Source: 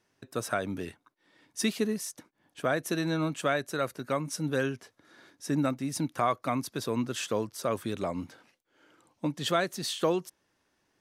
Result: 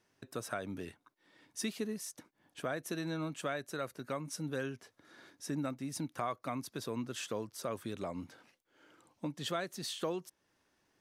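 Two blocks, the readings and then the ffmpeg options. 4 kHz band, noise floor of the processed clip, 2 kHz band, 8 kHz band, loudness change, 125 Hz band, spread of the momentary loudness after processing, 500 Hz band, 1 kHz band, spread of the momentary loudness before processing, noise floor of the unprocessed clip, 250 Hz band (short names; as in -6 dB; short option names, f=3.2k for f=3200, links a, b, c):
-7.5 dB, -79 dBFS, -9.0 dB, -6.5 dB, -8.5 dB, -8.0 dB, 10 LU, -9.0 dB, -9.0 dB, 10 LU, -75 dBFS, -8.5 dB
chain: -af "acompressor=threshold=-45dB:ratio=1.5,volume=-1.5dB"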